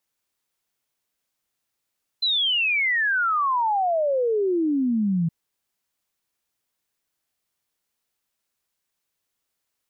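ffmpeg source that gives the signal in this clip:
-f lavfi -i "aevalsrc='0.112*clip(min(t,3.07-t)/0.01,0,1)*sin(2*PI*4100*3.07/log(160/4100)*(exp(log(160/4100)*t/3.07)-1))':d=3.07:s=44100"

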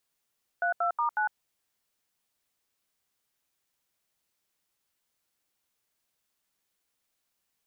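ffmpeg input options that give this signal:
-f lavfi -i "aevalsrc='0.0447*clip(min(mod(t,0.183),0.105-mod(t,0.183))/0.002,0,1)*(eq(floor(t/0.183),0)*(sin(2*PI*697*mod(t,0.183))+sin(2*PI*1477*mod(t,0.183)))+eq(floor(t/0.183),1)*(sin(2*PI*697*mod(t,0.183))+sin(2*PI*1336*mod(t,0.183)))+eq(floor(t/0.183),2)*(sin(2*PI*941*mod(t,0.183))+sin(2*PI*1209*mod(t,0.183)))+eq(floor(t/0.183),3)*(sin(2*PI*852*mod(t,0.183))+sin(2*PI*1477*mod(t,0.183))))':d=0.732:s=44100"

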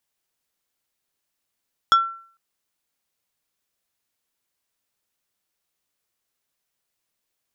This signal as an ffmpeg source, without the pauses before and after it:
-f lavfi -i "aevalsrc='0.355*pow(10,-3*t/0.49)*sin(2*PI*1350*t)+0.15*pow(10,-3*t/0.163)*sin(2*PI*3375*t)+0.0631*pow(10,-3*t/0.093)*sin(2*PI*5400*t)+0.0266*pow(10,-3*t/0.071)*sin(2*PI*6750*t)+0.0112*pow(10,-3*t/0.052)*sin(2*PI*8775*t)':d=0.45:s=44100"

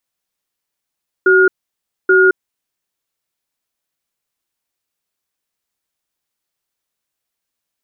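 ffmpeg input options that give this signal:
-f lavfi -i "aevalsrc='0.335*(sin(2*PI*376*t)+sin(2*PI*1430*t))*clip(min(mod(t,0.83),0.22-mod(t,0.83))/0.005,0,1)':d=1.65:s=44100"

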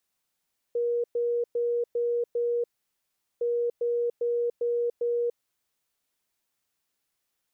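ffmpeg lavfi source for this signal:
-f lavfi -i "aevalsrc='0.0668*sin(2*PI*476*t)*clip(min(mod(mod(t,2.66),0.4),0.29-mod(mod(t,2.66),0.4))/0.005,0,1)*lt(mod(t,2.66),2)':d=5.32:s=44100"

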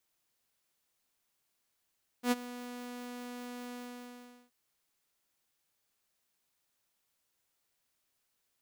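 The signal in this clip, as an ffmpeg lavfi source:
-f lavfi -i "aevalsrc='0.0841*(2*mod(245*t,1)-1)':d=2.274:s=44100,afade=t=in:d=0.085,afade=t=out:st=0.085:d=0.03:silence=0.133,afade=t=out:st=1.5:d=0.774"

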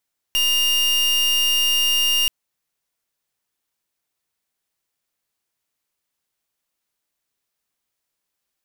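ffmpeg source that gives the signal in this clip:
-f lavfi -i "aevalsrc='0.119*(2*lt(mod(2820*t,1),0.39)-1)':d=1.93:s=44100"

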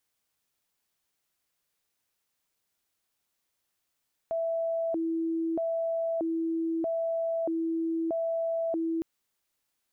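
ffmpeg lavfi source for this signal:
-f lavfi -i "aevalsrc='0.0473*sin(2*PI*(494.5*t+166.5/0.79*(0.5-abs(mod(0.79*t,1)-0.5))))':d=4.71:s=44100"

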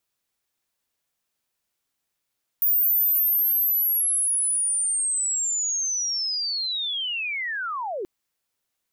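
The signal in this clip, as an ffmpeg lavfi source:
-f lavfi -i "aevalsrc='pow(10,(-17-10*t/5.43)/20)*sin(2*PI*(15000*t-14660*t*t/(2*5.43)))':d=5.43:s=44100"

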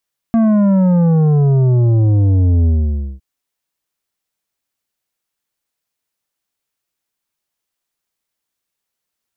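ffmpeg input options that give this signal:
-f lavfi -i "aevalsrc='0.316*clip((2.86-t)/0.54,0,1)*tanh(2.82*sin(2*PI*230*2.86/log(65/230)*(exp(log(65/230)*t/2.86)-1)))/tanh(2.82)':d=2.86:s=44100"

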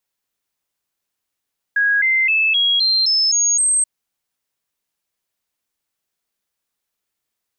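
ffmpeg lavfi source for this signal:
-f lavfi -i "aevalsrc='0.224*clip(min(mod(t,0.26),0.26-mod(t,0.26))/0.005,0,1)*sin(2*PI*1650*pow(2,floor(t/0.26)/3)*mod(t,0.26))':d=2.08:s=44100"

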